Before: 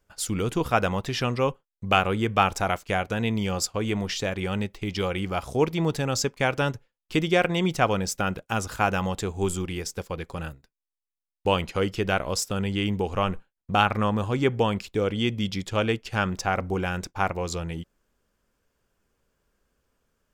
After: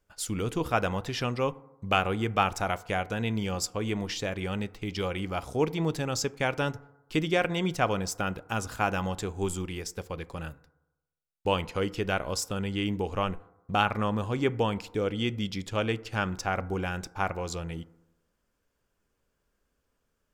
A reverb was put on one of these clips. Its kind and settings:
feedback delay network reverb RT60 0.97 s, low-frequency decay 0.9×, high-frequency decay 0.3×, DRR 17 dB
level −4 dB

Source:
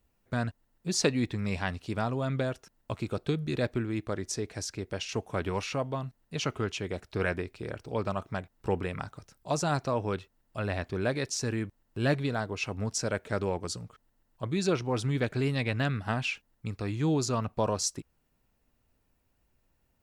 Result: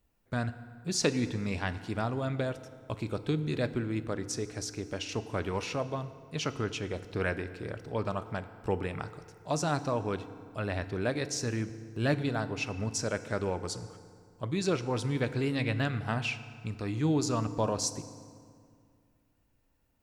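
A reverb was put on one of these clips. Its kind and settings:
feedback delay network reverb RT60 2.2 s, low-frequency decay 1.2×, high-frequency decay 0.65×, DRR 11.5 dB
level −1.5 dB

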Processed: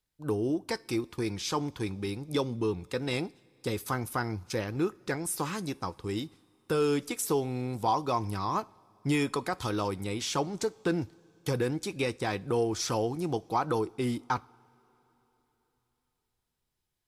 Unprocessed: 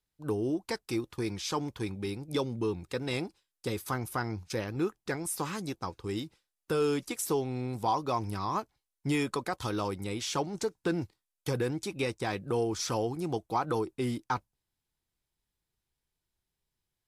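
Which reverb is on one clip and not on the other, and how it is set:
coupled-rooms reverb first 0.41 s, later 3.8 s, from −18 dB, DRR 19 dB
level +1.5 dB

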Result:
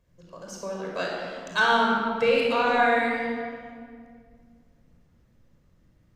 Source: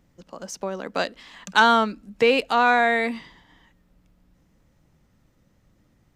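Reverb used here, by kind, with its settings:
rectangular room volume 3,600 cubic metres, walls mixed, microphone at 5.4 metres
level −10 dB

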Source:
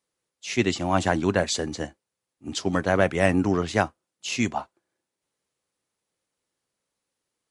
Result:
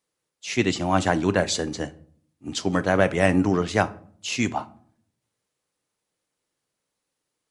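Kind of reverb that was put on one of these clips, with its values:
rectangular room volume 700 cubic metres, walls furnished, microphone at 0.48 metres
level +1 dB

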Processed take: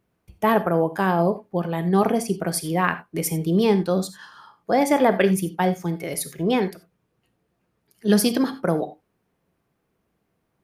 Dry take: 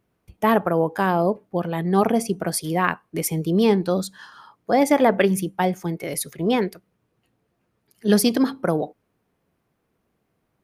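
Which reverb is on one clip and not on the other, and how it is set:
reverb whose tail is shaped and stops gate 110 ms flat, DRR 10 dB
level −1 dB

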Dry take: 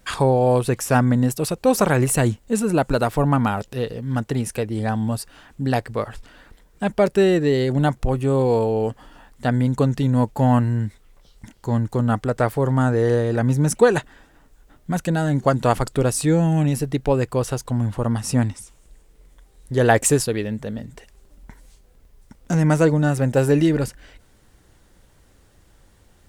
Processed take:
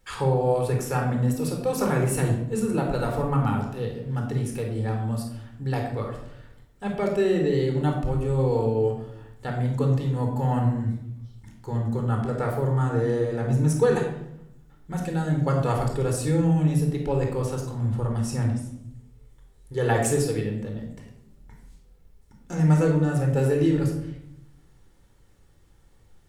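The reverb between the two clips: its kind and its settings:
rectangular room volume 1,900 cubic metres, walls furnished, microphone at 4.2 metres
level −11 dB

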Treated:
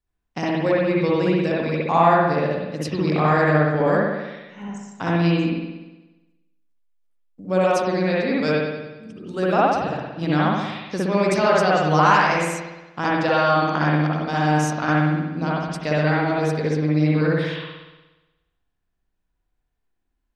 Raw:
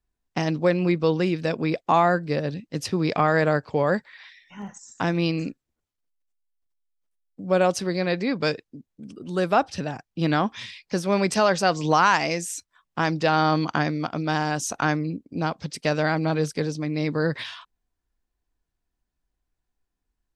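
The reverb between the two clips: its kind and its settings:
spring reverb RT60 1.1 s, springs 59 ms, chirp 40 ms, DRR −6 dB
level −3.5 dB

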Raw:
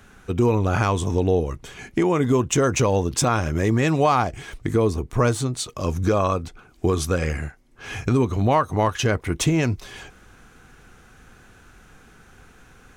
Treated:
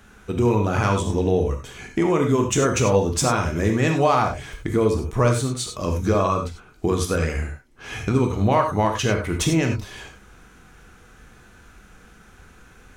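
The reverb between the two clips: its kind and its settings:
reverb whose tail is shaped and stops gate 120 ms flat, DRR 3 dB
level −1 dB

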